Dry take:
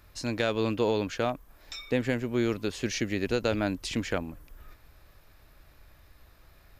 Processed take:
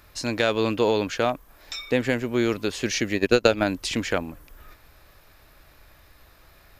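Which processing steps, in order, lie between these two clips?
low-shelf EQ 250 Hz −6 dB
0:03.14–0:03.64: transient designer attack +8 dB, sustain −12 dB
level +6.5 dB

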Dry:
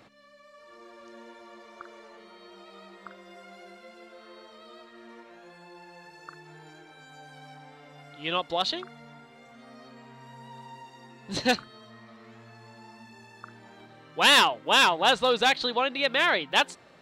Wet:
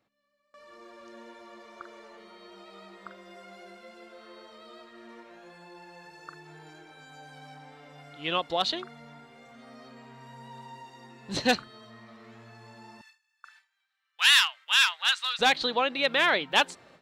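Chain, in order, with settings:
0:13.01–0:15.39: high-pass filter 1,400 Hz 24 dB per octave
noise gate with hold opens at −45 dBFS

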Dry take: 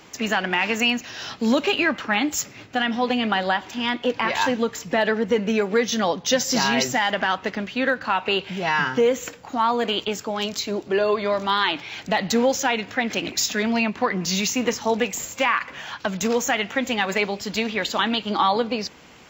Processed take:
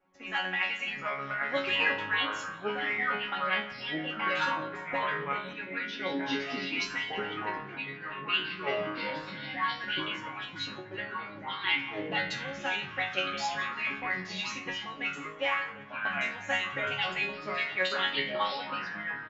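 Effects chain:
harmonic and percussive parts rebalanced harmonic −13 dB
noise gate −38 dBFS, range −8 dB
0:06.22–0:09.07: gain on a spectral selection 500–1,900 Hz −30 dB
dynamic equaliser 2,600 Hz, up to +8 dB, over −40 dBFS, Q 0.93
resonators tuned to a chord F#3 fifth, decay 0.41 s
repeating echo 173 ms, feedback 56%, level −18.5 dB
low-pass that shuts in the quiet parts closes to 1,600 Hz, open at −27.5 dBFS
delay with pitch and tempo change per echo 594 ms, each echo −5 semitones, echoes 2
0:05.53–0:06.80: loudspeaker in its box 120–4,900 Hz, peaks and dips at 120 Hz +7 dB, 280 Hz +10 dB, 760 Hz −10 dB, 1,200 Hz −8 dB
level +7 dB

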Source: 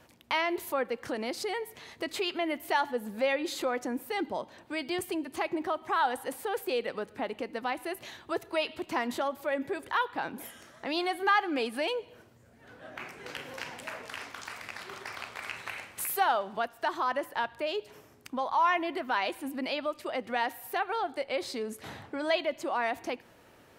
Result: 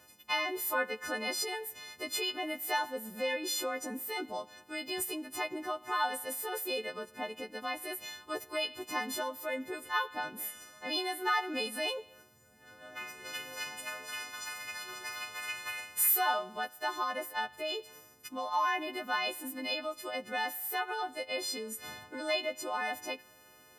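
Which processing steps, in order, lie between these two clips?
every partial snapped to a pitch grid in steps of 3 semitones
0:00.67–0:01.44: dynamic equaliser 1,400 Hz, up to +8 dB, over −45 dBFS, Q 0.91
level −5.5 dB

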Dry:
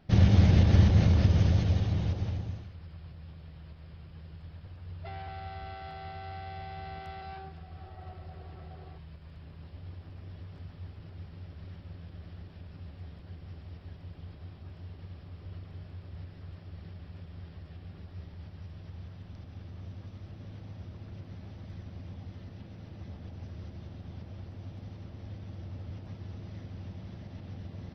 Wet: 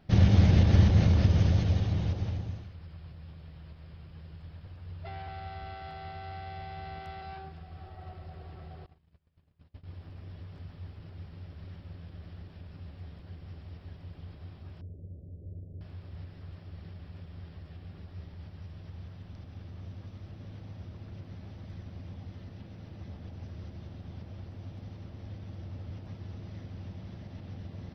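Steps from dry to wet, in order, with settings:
0:08.86–0:09.95: noise gate −43 dBFS, range −28 dB
0:14.81–0:15.81: Butterworth low-pass 600 Hz 48 dB per octave

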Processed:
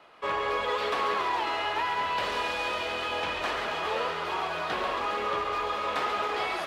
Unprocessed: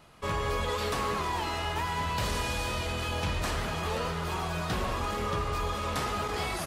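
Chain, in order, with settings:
three-way crossover with the lows and the highs turned down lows −23 dB, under 320 Hz, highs −18 dB, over 3,900 Hz
delay with a high-pass on its return 138 ms, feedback 79%, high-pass 2,500 Hz, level −7 dB
level +4 dB

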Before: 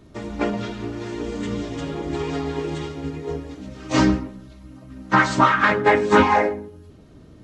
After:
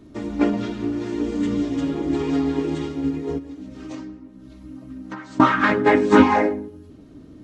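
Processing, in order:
parametric band 280 Hz +11 dB 0.61 octaves
0:03.38–0:05.40: downward compressor 20 to 1, threshold −30 dBFS, peak gain reduction 24.5 dB
level −2 dB

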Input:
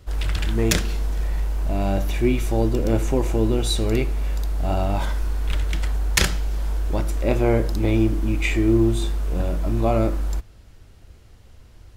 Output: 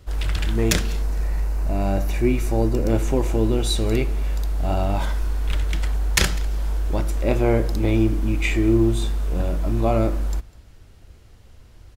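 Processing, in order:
0:01.02–0:02.90: parametric band 3,300 Hz −8.5 dB 0.32 octaves
on a send: single-tap delay 200 ms −23 dB

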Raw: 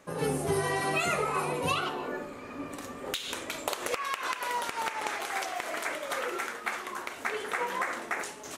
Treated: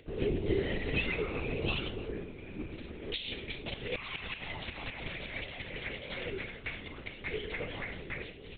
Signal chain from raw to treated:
flat-topped bell 1,000 Hz −16 dB
linear-prediction vocoder at 8 kHz whisper
upward compression, threshold −54 dBFS

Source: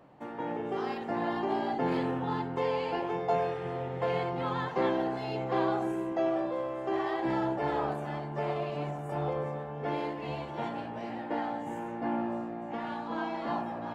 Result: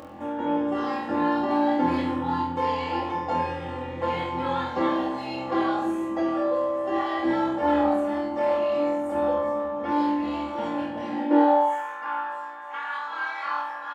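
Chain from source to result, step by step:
comb filter 3.6 ms, depth 97%
upward compression, threshold −36 dBFS
high-pass filter sweep 79 Hz → 1,300 Hz, 0:10.95–0:11.74
on a send: flutter between parallel walls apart 4.1 metres, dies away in 0.52 s

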